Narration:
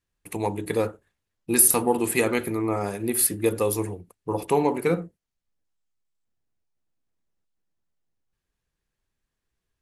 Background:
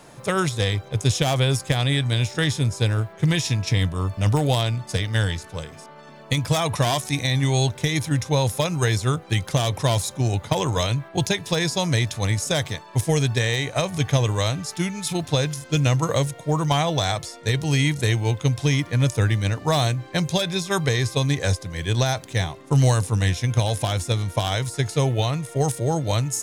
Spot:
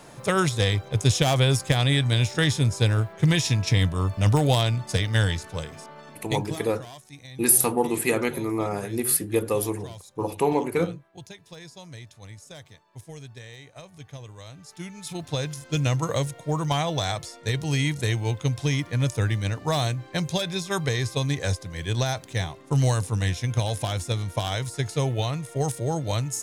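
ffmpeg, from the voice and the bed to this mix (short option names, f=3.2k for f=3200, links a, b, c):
-filter_complex "[0:a]adelay=5900,volume=-1dB[a];[1:a]volume=17dB,afade=t=out:st=5.99:d=0.63:silence=0.0891251,afade=t=in:st=14.46:d=1.33:silence=0.141254[b];[a][b]amix=inputs=2:normalize=0"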